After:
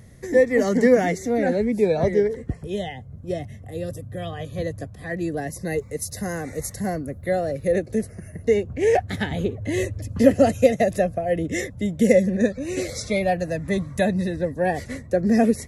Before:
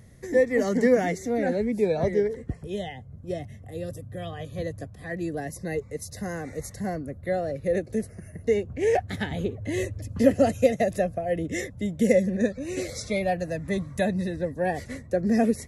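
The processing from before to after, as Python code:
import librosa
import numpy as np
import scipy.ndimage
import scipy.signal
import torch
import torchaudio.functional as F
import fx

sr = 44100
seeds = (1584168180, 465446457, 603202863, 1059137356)

y = fx.high_shelf(x, sr, hz=9100.0, db=10.0, at=(5.57, 7.72))
y = F.gain(torch.from_numpy(y), 4.0).numpy()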